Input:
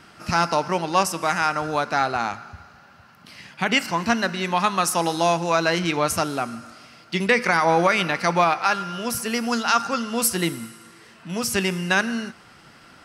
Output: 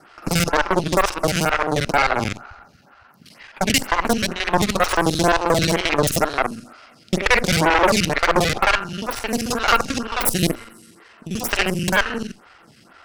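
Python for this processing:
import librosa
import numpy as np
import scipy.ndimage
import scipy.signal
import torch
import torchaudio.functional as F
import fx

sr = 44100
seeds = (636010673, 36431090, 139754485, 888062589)

y = fx.local_reverse(x, sr, ms=44.0)
y = fx.cheby_harmonics(y, sr, harmonics=(6,), levels_db=(-8,), full_scale_db=-6.5)
y = fx.stagger_phaser(y, sr, hz=2.1)
y = F.gain(torch.from_numpy(y), 3.0).numpy()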